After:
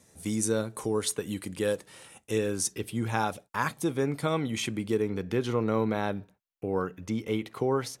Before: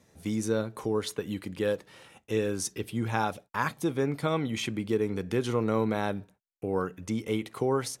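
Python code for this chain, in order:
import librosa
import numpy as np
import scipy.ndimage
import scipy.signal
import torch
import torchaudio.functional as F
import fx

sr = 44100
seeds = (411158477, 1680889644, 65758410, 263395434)

y = fx.peak_eq(x, sr, hz=9000.0, db=fx.steps((0.0, 12.5), (2.38, 5.5), (5.02, -5.5)), octaves=0.98)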